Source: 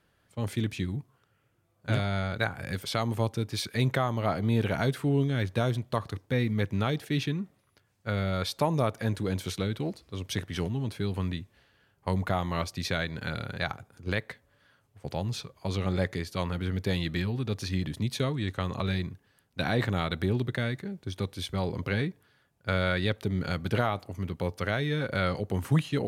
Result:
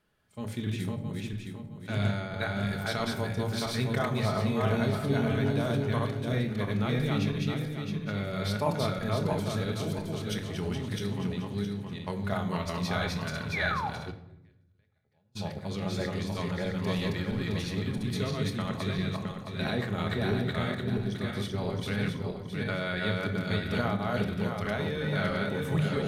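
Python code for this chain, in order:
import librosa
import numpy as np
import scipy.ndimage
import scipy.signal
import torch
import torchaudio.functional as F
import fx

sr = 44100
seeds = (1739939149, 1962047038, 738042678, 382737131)

y = fx.reverse_delay_fb(x, sr, ms=333, feedback_pct=57, wet_db=-0.5)
y = fx.spec_paint(y, sr, seeds[0], shape='fall', start_s=13.52, length_s=0.38, low_hz=710.0, high_hz=2500.0, level_db=-28.0)
y = fx.chorus_voices(y, sr, voices=4, hz=0.26, base_ms=27, depth_ms=3.0, mix_pct=20)
y = fx.gate_flip(y, sr, shuts_db=-35.0, range_db=-36, at=(14.1, 15.35), fade=0.02)
y = fx.room_shoebox(y, sr, seeds[1], volume_m3=2200.0, walls='furnished', distance_m=1.4)
y = F.gain(torch.from_numpy(y), -3.5).numpy()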